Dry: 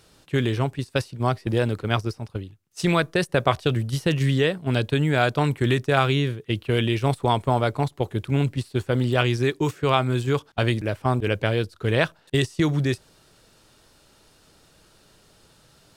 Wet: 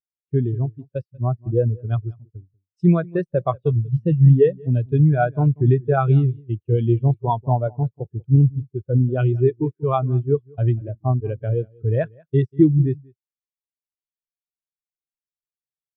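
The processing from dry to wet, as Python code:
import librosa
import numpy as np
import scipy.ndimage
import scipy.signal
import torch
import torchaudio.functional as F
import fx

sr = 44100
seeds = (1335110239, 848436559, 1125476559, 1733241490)

p1 = x + fx.echo_single(x, sr, ms=189, db=-11.0, dry=0)
y = fx.spectral_expand(p1, sr, expansion=2.5)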